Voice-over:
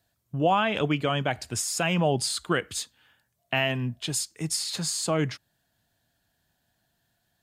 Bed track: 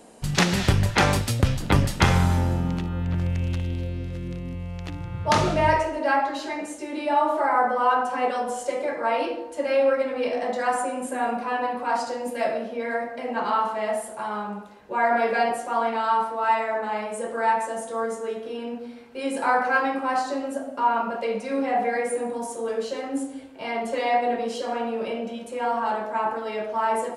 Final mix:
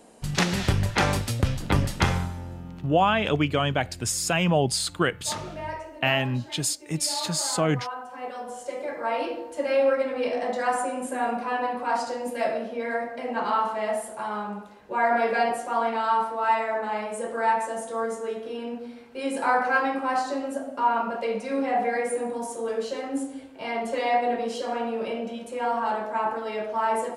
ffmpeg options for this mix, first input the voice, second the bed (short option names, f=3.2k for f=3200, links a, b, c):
-filter_complex "[0:a]adelay=2500,volume=2dB[a];[1:a]volume=10dB,afade=t=out:st=2.01:d=0.32:silence=0.281838,afade=t=in:st=8.07:d=1.5:silence=0.223872[b];[a][b]amix=inputs=2:normalize=0"